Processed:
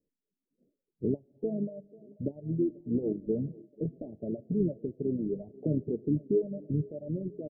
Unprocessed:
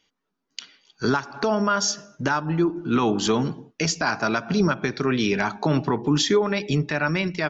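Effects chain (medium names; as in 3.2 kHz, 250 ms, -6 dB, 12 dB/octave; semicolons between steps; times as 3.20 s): steep low-pass 580 Hz 72 dB/octave; reverb removal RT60 1.5 s; harmony voices -5 st -13 dB; on a send: thinning echo 489 ms, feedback 81%, high-pass 300 Hz, level -20 dB; on the sum: trim -6.5 dB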